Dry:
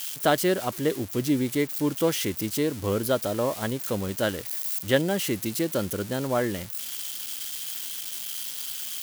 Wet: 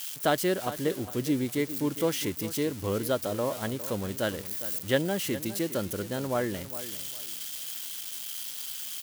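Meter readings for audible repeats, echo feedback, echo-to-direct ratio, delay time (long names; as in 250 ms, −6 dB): 2, 26%, −13.5 dB, 407 ms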